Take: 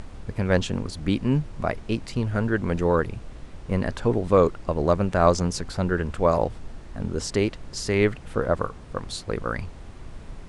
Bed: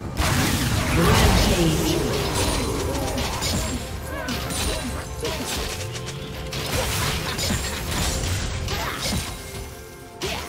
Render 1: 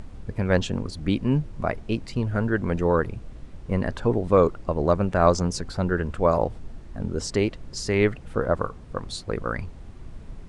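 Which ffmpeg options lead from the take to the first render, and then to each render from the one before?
-af "afftdn=nr=6:nf=-42"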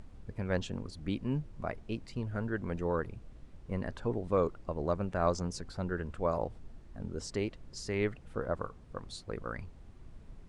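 -af "volume=-11dB"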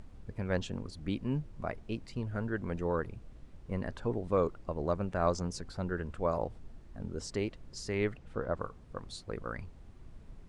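-filter_complex "[0:a]asettb=1/sr,asplit=3[a][b][c];[a]atrim=end=8.174[d];[b]atrim=start=8.17:end=8.6,asetpts=PTS-STARTPTS,afade=t=in:d=0.004:c=qsin,afade=t=out:st=0.426:d=0.004:c=qsin,lowpass=7.2k[e];[c]atrim=start=8.596[f];[d][e]acrossfade=d=0.004:c1=hsin:c2=qsin[g];[g][f]acrossfade=d=0.004:c1=qsin:c2=hsin"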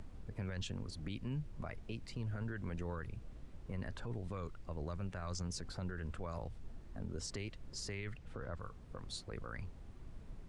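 -filter_complex "[0:a]acrossover=split=150|1500[a][b][c];[b]acompressor=threshold=-42dB:ratio=6[d];[a][d][c]amix=inputs=3:normalize=0,alimiter=level_in=9dB:limit=-24dB:level=0:latency=1:release=20,volume=-9dB"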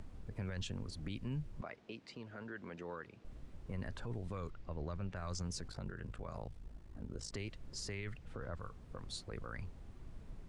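-filter_complex "[0:a]asettb=1/sr,asplit=3[a][b][c];[a]atrim=end=1.614[d];[b]atrim=start=1.61:end=3.25,asetpts=PTS-STARTPTS,afade=t=in:d=0.004:c=qsin,afade=t=out:st=1.636:d=0.004:c=qsin,highpass=260,lowpass=5.4k[e];[c]atrim=start=3.246[f];[d][e]acrossfade=d=0.004:c1=hsin:c2=qsin[g];[g][f]acrossfade=d=0.004:c1=qsin:c2=hsin,asettb=1/sr,asplit=3[h][i][j];[h]atrim=end=4.504[k];[i]atrim=start=4.5:end=5.16,asetpts=PTS-STARTPTS,afade=t=in:d=0.004:c=qsin,afade=t=out:st=0.656:d=0.004:c=qsin,lowpass=5.3k[l];[j]atrim=start=5.156[m];[k][l]acrossfade=d=0.004:c1=hsin:c2=qsin[n];[n][m]acrossfade=d=0.004:c1=qsin:c2=hsin,asplit=3[o][p][q];[o]afade=t=out:st=5.67:d=0.02[r];[p]aeval=exprs='val(0)*sin(2*PI*27*n/s)':c=same,afade=t=in:st=5.67:d=0.02,afade=t=out:st=7.31:d=0.02[s];[q]afade=t=in:st=7.31:d=0.02[t];[r][s][t]amix=inputs=3:normalize=0"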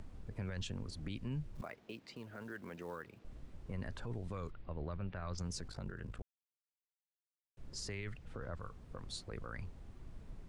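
-filter_complex "[0:a]asettb=1/sr,asplit=3[a][b][c];[a]atrim=end=1.554[d];[b]atrim=start=1.55:end=3.19,asetpts=PTS-STARTPTS,afade=t=in:d=0.004:c=qsin,afade=t=out:st=1.636:d=0.004:c=qsin,acrusher=bits=6:mode=log:mix=0:aa=0.000001[e];[c]atrim=start=3.186[f];[d][e]acrossfade=d=0.004:c1=hsin:c2=qsin[g];[g][f]acrossfade=d=0.004:c1=qsin:c2=hsin,asettb=1/sr,asplit=3[h][i][j];[h]atrim=end=4.514[k];[i]atrim=start=4.51:end=5.38,asetpts=PTS-STARTPTS,afade=t=in:d=0.004:c=qsin,afade=t=out:st=0.866:d=0.004:c=qsin,lowpass=f=4.1k:w=0.5412,lowpass=f=4.1k:w=1.3066[l];[j]atrim=start=5.376[m];[k][l]acrossfade=d=0.004:c1=hsin:c2=qsin[n];[n][m]acrossfade=d=0.004:c1=qsin:c2=hsin,asplit=3[o][p][q];[o]atrim=end=6.22,asetpts=PTS-STARTPTS,afade=t=out:st=6.216:d=0.004:c=hsin[r];[p]atrim=start=6.22:end=7.57,asetpts=PTS-STARTPTS,volume=0[s];[q]atrim=start=7.57,asetpts=PTS-STARTPTS,afade=t=in:d=0.004:c=hsin[t];[r][s][t]concat=n=3:v=0:a=1"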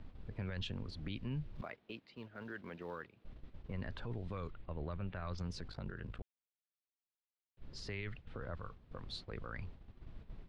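-af "agate=range=-8dB:threshold=-49dB:ratio=16:detection=peak,highshelf=f=5.4k:t=q:w=1.5:g=-13"

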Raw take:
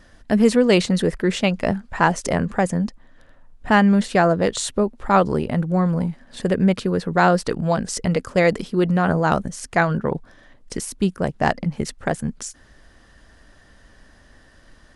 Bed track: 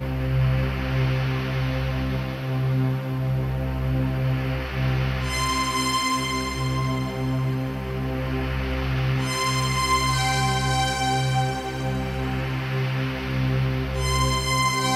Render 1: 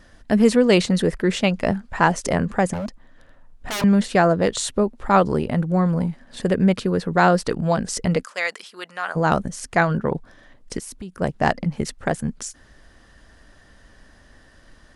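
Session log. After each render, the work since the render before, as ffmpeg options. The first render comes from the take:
-filter_complex "[0:a]asettb=1/sr,asplit=3[a][b][c];[a]atrim=end=2.734[d];[b]atrim=start=2.73:end=3.84,asetpts=PTS-STARTPTS,afade=t=in:d=0.004:c=qsin,afade=t=out:st=1.106:d=0.004:c=qsin,aeval=exprs='0.0841*(abs(mod(val(0)/0.0841+3,4)-2)-1)':c=same[e];[c]atrim=start=3.836[f];[d][e]acrossfade=d=0.004:c1=hsin:c2=qsin[g];[g][f]acrossfade=d=0.004:c1=qsin:c2=hsin,asplit=3[h][i][j];[h]afade=t=out:st=8.23:d=0.02[k];[i]highpass=1.2k,afade=t=in:st=8.23:d=0.02,afade=t=out:st=9.15:d=0.02[l];[j]afade=t=in:st=9.15:d=0.02[m];[k][l][m]amix=inputs=3:normalize=0,asplit=3[n][o][p];[n]afade=t=out:st=10.78:d=0.02[q];[o]acompressor=threshold=-32dB:ratio=5:attack=3.2:release=140:knee=1:detection=peak,afade=t=in:st=10.78:d=0.02,afade=t=out:st=11.2:d=0.02[r];[p]afade=t=in:st=11.2:d=0.02[s];[q][r][s]amix=inputs=3:normalize=0"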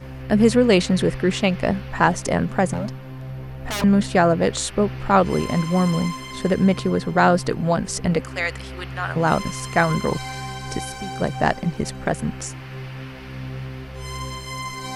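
-filter_complex "[1:a]volume=-9dB[a];[0:a][a]amix=inputs=2:normalize=0"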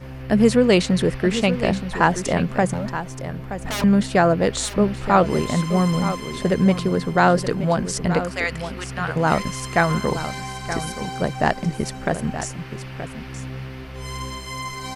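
-af "aecho=1:1:925:0.282"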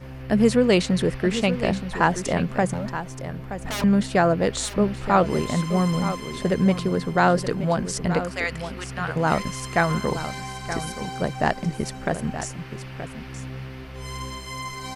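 -af "volume=-2.5dB"

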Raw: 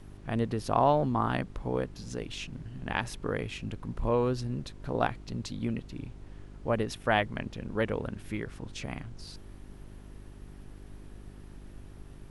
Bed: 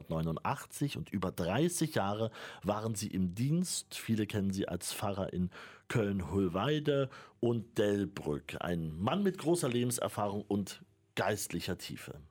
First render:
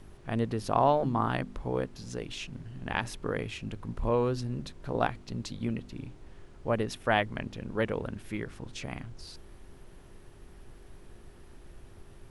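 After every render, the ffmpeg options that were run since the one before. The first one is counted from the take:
-af "bandreject=f=50:t=h:w=4,bandreject=f=100:t=h:w=4,bandreject=f=150:t=h:w=4,bandreject=f=200:t=h:w=4,bandreject=f=250:t=h:w=4,bandreject=f=300:t=h:w=4"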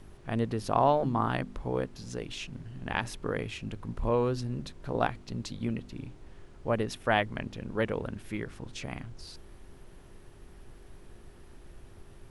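-af anull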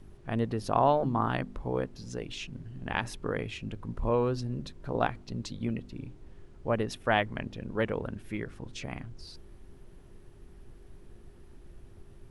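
-af "afftdn=nr=6:nf=-52"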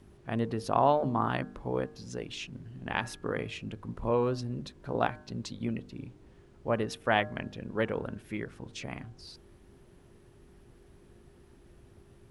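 -af "highpass=f=93:p=1,bandreject=f=152.2:t=h:w=4,bandreject=f=304.4:t=h:w=4,bandreject=f=456.6:t=h:w=4,bandreject=f=608.8:t=h:w=4,bandreject=f=761:t=h:w=4,bandreject=f=913.2:t=h:w=4,bandreject=f=1.0654k:t=h:w=4,bandreject=f=1.2176k:t=h:w=4,bandreject=f=1.3698k:t=h:w=4,bandreject=f=1.522k:t=h:w=4,bandreject=f=1.6742k:t=h:w=4"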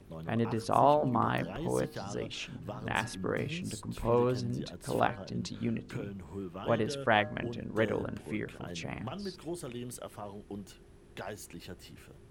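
-filter_complex "[1:a]volume=-9dB[a];[0:a][a]amix=inputs=2:normalize=0"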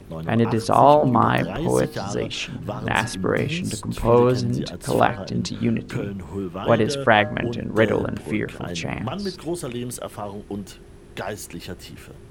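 -af "volume=11.5dB,alimiter=limit=-2dB:level=0:latency=1"

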